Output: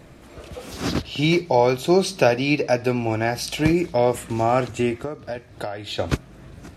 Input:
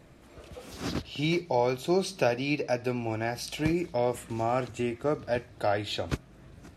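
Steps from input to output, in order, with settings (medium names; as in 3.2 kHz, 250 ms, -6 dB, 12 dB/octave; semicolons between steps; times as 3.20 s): 5.01–5.99 s: compression 12:1, threshold -35 dBFS, peak gain reduction 14 dB; trim +8.5 dB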